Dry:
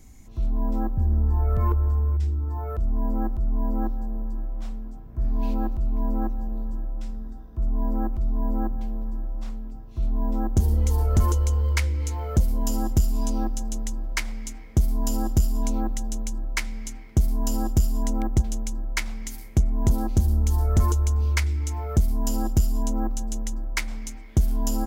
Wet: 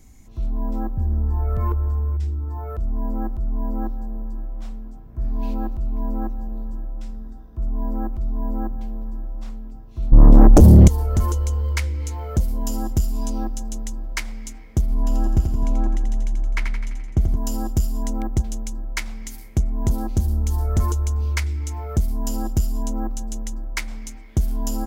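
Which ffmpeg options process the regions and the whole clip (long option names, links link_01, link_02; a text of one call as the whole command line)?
ffmpeg -i in.wav -filter_complex "[0:a]asettb=1/sr,asplit=3[link_01][link_02][link_03];[link_01]atrim=end=10.124[link_04];[link_02]atrim=start=10.12:end=10.88,asetpts=PTS-STARTPTS,afade=type=in:duration=0.004:curve=qsin,afade=type=out:start_time=0.756:duration=0.004:curve=qsin,lowshelf=frequency=460:gain=9,aeval=exprs='0.668*sin(PI/2*2.51*val(0)/0.668)':channel_layout=same[link_05];[link_03]atrim=start=10.876[link_06];[link_04][link_05]acrossfade=duration=0.004:curve1=hsin:curve2=qsin[link_07];[link_07][link_06]acrossfade=duration=0.004:curve1=qsin:curve2=hsin,asettb=1/sr,asplit=3[link_08][link_09][link_10];[link_08]atrim=end=14.814[link_11];[link_09]atrim=start=14.81:end=17.37,asetpts=PTS-STARTPTS,afade=type=in:duration=0.004:curve=qsin,afade=type=out:start_time=2.556:duration=0.004:curve=qsin,bass=frequency=250:gain=1,treble=frequency=4000:gain=-13,aecho=1:1:85|170|255|340|425|510|595:0.501|0.281|0.157|0.088|0.0493|0.0276|0.0155,atrim=end_sample=112896[link_12];[link_10]atrim=start=17.366[link_13];[link_11][link_12]acrossfade=duration=0.004:curve1=hsin:curve2=qsin[link_14];[link_14][link_13]acrossfade=duration=0.004:curve1=qsin:curve2=hsin" out.wav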